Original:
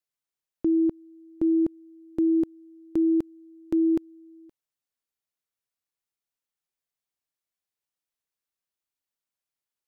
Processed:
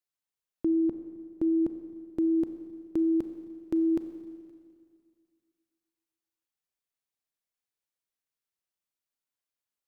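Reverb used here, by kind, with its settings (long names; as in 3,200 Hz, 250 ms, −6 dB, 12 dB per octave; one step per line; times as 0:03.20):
four-comb reverb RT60 2.1 s, combs from 29 ms, DRR 8.5 dB
level −3 dB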